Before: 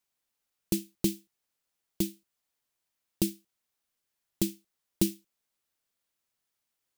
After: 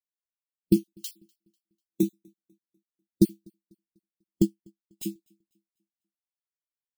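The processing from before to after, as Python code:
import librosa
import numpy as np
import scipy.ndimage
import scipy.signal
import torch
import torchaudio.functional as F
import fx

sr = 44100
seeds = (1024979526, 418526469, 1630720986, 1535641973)

p1 = fx.spec_dropout(x, sr, seeds[0], share_pct=31)
p2 = fx.highpass(p1, sr, hz=220.0, slope=12, at=(0.76, 2.03))
p3 = fx.transient(p2, sr, attack_db=-7, sustain_db=-11, at=(4.42, 5.03))
p4 = p3 + fx.echo_feedback(p3, sr, ms=247, feedback_pct=54, wet_db=-21.5, dry=0)
p5 = fx.spectral_expand(p4, sr, expansion=1.5)
y = p5 * librosa.db_to_amplitude(6.0)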